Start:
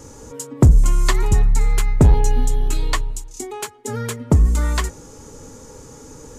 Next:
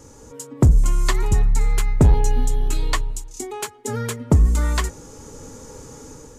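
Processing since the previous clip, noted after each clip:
automatic gain control gain up to 6 dB
level −5 dB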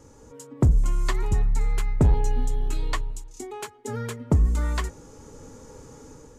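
high-shelf EQ 4,300 Hz −6.5 dB
level −5 dB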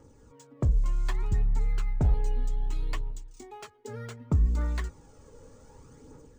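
phase shifter 0.65 Hz, delay 2.1 ms, feedback 42%
linearly interpolated sample-rate reduction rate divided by 3×
level −8 dB

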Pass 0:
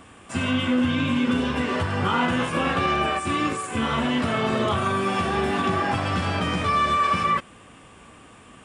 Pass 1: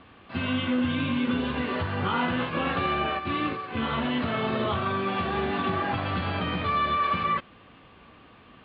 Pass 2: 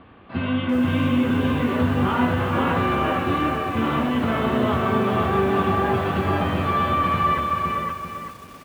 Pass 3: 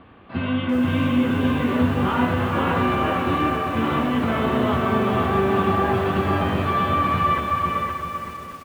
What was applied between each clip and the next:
Butterworth low-pass 4,500 Hz 96 dB per octave; level −4 dB
high-shelf EQ 2,400 Hz −12 dB; single-tap delay 516 ms −3.5 dB; feedback echo at a low word length 392 ms, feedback 35%, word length 8 bits, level −6.5 dB; level +5 dB
single-tap delay 622 ms −10.5 dB

